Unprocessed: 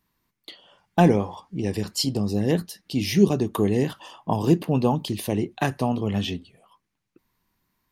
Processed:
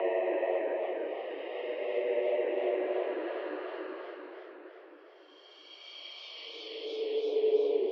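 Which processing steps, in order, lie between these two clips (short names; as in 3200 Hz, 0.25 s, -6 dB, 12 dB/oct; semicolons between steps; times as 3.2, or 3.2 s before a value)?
Paulstretch 19×, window 0.10 s, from 1.67; mistuned SSB +160 Hz 230–2700 Hz; warbling echo 0.28 s, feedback 68%, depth 214 cents, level -9 dB; gain -3 dB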